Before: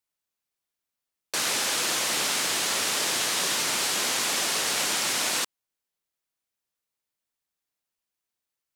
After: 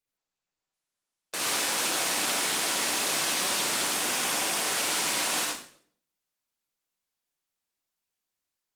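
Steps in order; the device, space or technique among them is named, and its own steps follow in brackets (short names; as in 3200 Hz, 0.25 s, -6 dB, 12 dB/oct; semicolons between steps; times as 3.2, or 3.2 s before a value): 3.84–4.66 dynamic EQ 4100 Hz, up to -6 dB, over -50 dBFS, Q 6.8; far-field microphone of a smart speaker (reverb RT60 0.55 s, pre-delay 54 ms, DRR -1.5 dB; HPF 110 Hz 12 dB/oct; AGC gain up to 3 dB; gain -6 dB; Opus 24 kbps 48000 Hz)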